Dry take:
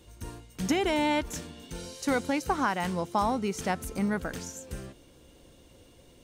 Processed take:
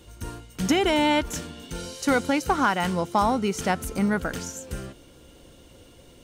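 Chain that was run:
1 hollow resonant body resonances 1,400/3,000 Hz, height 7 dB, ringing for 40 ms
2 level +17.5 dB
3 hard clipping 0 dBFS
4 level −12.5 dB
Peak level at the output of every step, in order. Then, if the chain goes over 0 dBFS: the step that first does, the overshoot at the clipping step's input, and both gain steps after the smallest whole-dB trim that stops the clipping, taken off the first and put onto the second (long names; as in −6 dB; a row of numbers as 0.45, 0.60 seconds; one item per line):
−14.5, +3.0, 0.0, −12.5 dBFS
step 2, 3.0 dB
step 2 +14.5 dB, step 4 −9.5 dB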